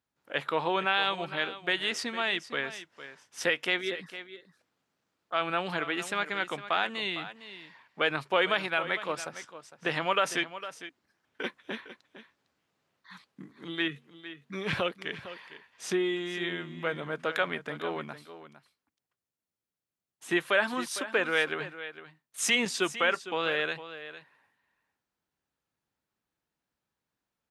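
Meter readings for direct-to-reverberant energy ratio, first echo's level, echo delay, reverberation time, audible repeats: no reverb audible, −13.5 dB, 456 ms, no reverb audible, 1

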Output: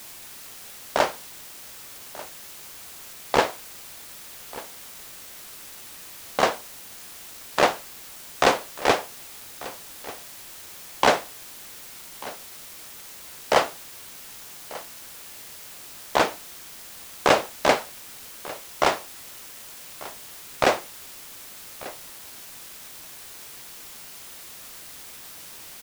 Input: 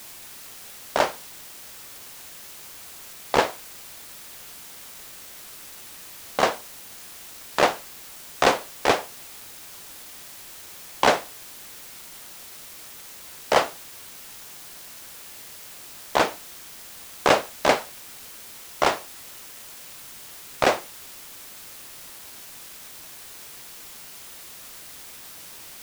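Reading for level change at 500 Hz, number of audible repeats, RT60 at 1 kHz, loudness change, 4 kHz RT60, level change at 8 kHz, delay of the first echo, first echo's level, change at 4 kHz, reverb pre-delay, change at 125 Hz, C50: 0.0 dB, 1, no reverb audible, 0.0 dB, no reverb audible, 0.0 dB, 1,191 ms, −18.5 dB, 0.0 dB, no reverb audible, 0.0 dB, no reverb audible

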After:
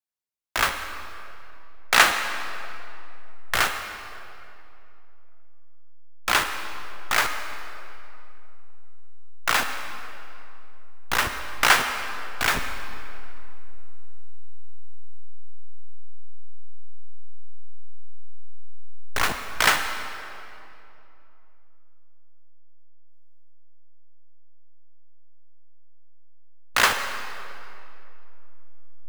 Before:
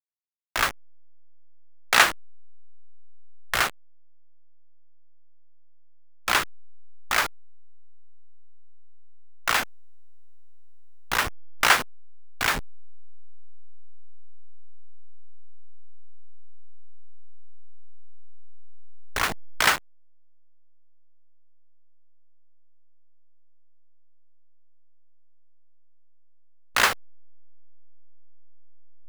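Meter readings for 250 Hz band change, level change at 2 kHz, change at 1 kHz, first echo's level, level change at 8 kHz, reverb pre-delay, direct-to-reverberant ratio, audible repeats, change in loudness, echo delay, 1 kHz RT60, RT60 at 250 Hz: +2.0 dB, +2.0 dB, +2.0 dB, no echo audible, +1.5 dB, 32 ms, 6.5 dB, no echo audible, 0.0 dB, no echo audible, 2.7 s, 3.2 s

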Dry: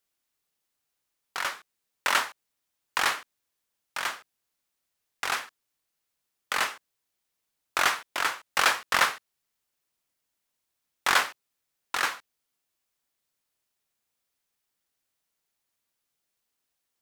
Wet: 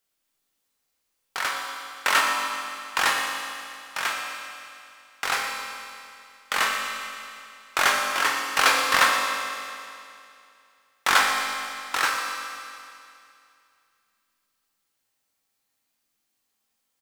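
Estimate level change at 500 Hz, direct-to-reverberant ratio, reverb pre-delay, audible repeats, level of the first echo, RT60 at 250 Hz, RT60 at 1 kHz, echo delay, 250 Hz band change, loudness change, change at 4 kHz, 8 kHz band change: +5.0 dB, 0.0 dB, 4 ms, 1, −12.5 dB, 2.5 s, 2.5 s, 121 ms, +6.5 dB, +3.5 dB, +5.0 dB, +5.0 dB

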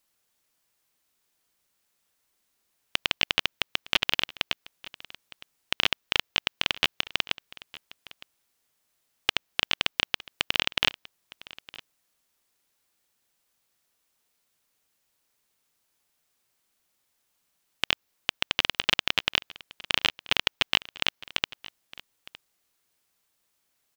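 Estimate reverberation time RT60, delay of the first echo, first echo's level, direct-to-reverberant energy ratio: no reverb audible, 911 ms, −20.0 dB, no reverb audible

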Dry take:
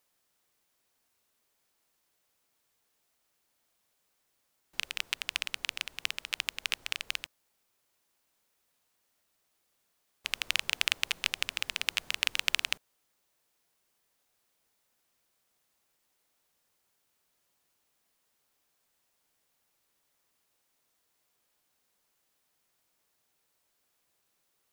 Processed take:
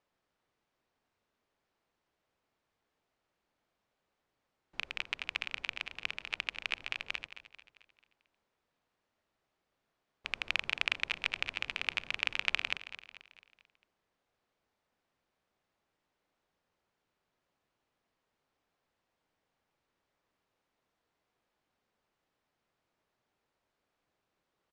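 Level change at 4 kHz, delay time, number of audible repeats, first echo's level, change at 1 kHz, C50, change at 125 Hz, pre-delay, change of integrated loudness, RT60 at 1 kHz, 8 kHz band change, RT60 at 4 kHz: −6.0 dB, 221 ms, 4, −13.0 dB, −0.5 dB, no reverb audible, can't be measured, no reverb audible, −3.0 dB, no reverb audible, −15.5 dB, no reverb audible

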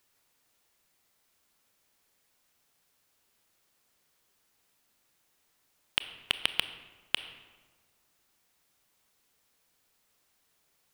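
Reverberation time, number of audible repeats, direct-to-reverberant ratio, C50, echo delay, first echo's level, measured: 1.5 s, no echo audible, 11.0 dB, 12.0 dB, no echo audible, no echo audible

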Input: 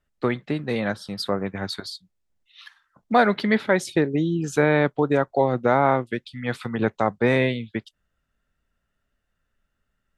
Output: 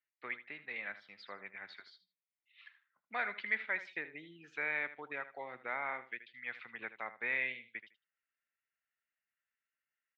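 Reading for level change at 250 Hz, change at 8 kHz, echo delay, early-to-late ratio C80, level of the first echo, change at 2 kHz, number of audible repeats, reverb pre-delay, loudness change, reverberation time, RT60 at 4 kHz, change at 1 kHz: −32.5 dB, below −35 dB, 78 ms, no reverb audible, −14.0 dB, −8.5 dB, 2, no reverb audible, −16.5 dB, no reverb audible, no reverb audible, −20.5 dB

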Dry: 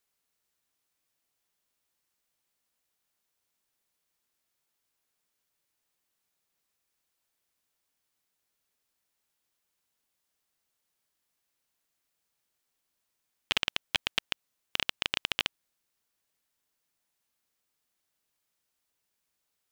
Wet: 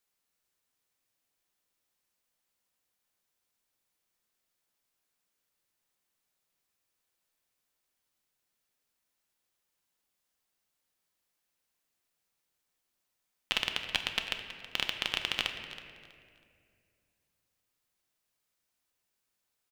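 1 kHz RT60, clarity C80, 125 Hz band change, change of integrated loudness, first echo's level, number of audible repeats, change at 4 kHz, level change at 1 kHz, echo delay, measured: 2.0 s, 7.0 dB, −0.5 dB, −1.0 dB, −15.0 dB, 2, −1.0 dB, −1.0 dB, 323 ms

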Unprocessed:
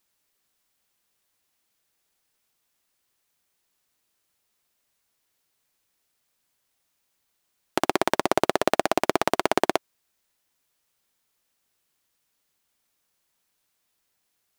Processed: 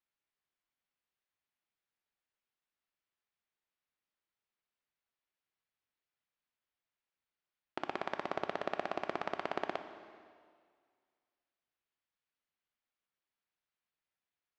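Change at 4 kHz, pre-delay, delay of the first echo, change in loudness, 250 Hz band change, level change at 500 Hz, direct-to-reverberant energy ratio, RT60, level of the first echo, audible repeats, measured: −17.0 dB, 6 ms, no echo audible, −15.0 dB, −17.0 dB, −15.0 dB, 8.5 dB, 2.0 s, no echo audible, no echo audible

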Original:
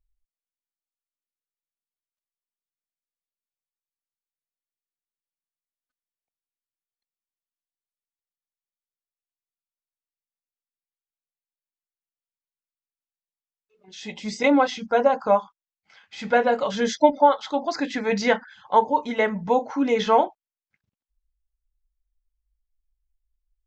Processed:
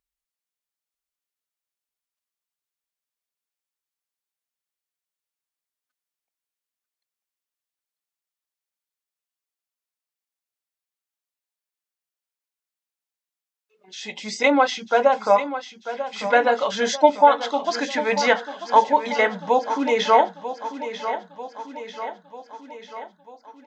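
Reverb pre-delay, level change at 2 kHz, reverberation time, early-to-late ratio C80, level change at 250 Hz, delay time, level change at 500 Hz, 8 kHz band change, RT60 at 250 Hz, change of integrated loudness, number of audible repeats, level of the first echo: no reverb audible, +4.5 dB, no reverb audible, no reverb audible, −2.5 dB, 943 ms, +1.5 dB, can't be measured, no reverb audible, +1.5 dB, 5, −11.5 dB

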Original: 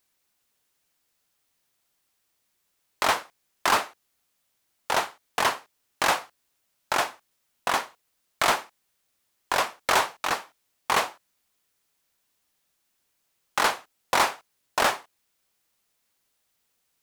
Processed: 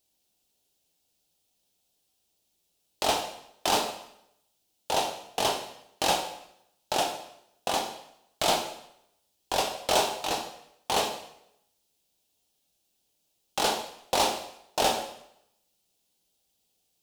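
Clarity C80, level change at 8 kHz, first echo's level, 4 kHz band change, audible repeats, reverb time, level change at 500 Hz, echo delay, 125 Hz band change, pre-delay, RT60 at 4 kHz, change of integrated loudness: 10.5 dB, +0.5 dB, no echo audible, +1.0 dB, no echo audible, 0.75 s, +1.5 dB, no echo audible, +1.5 dB, 5 ms, 0.70 s, −2.5 dB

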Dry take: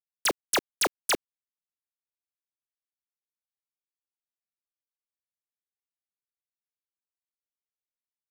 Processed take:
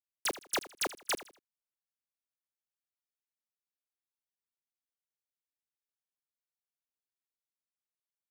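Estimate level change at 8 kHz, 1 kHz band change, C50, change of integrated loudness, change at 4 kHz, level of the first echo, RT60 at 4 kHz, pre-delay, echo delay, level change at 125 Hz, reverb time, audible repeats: −7.5 dB, −7.5 dB, no reverb audible, −7.5 dB, −7.5 dB, −16.0 dB, no reverb audible, no reverb audible, 80 ms, −7.5 dB, no reverb audible, 2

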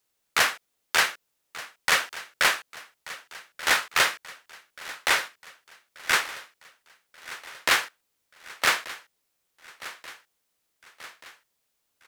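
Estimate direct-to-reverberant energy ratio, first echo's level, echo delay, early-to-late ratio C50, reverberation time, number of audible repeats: no reverb audible, −17.0 dB, 1,183 ms, no reverb audible, no reverb audible, 4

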